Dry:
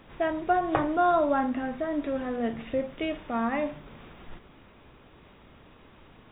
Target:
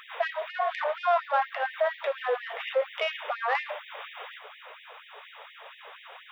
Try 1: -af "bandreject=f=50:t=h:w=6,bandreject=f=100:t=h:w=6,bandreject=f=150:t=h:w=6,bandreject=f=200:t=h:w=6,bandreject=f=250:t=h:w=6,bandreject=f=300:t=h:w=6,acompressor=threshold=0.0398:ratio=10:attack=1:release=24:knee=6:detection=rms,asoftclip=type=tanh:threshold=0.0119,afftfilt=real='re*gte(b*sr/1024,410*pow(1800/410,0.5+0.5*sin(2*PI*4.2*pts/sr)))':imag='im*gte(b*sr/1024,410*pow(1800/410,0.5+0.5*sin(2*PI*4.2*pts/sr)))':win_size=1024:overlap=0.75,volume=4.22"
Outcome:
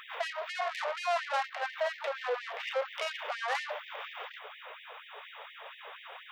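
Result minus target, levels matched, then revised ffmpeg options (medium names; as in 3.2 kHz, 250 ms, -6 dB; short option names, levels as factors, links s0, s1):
saturation: distortion +12 dB
-af "bandreject=f=50:t=h:w=6,bandreject=f=100:t=h:w=6,bandreject=f=150:t=h:w=6,bandreject=f=200:t=h:w=6,bandreject=f=250:t=h:w=6,bandreject=f=300:t=h:w=6,acompressor=threshold=0.0398:ratio=10:attack=1:release=24:knee=6:detection=rms,asoftclip=type=tanh:threshold=0.0447,afftfilt=real='re*gte(b*sr/1024,410*pow(1800/410,0.5+0.5*sin(2*PI*4.2*pts/sr)))':imag='im*gte(b*sr/1024,410*pow(1800/410,0.5+0.5*sin(2*PI*4.2*pts/sr)))':win_size=1024:overlap=0.75,volume=4.22"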